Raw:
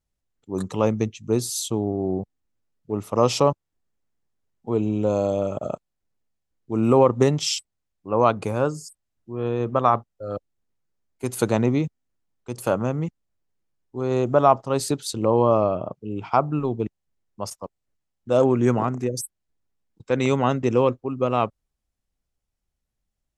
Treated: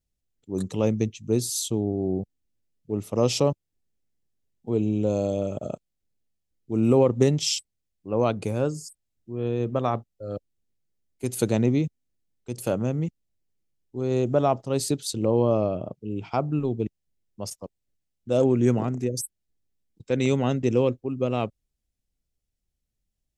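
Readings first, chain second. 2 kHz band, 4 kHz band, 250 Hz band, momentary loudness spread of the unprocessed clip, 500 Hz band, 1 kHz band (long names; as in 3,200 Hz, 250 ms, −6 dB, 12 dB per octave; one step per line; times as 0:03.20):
−4.5 dB, −1.0 dB, −1.0 dB, 15 LU, −3.0 dB, −9.0 dB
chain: parametric band 1,100 Hz −12 dB 1.3 octaves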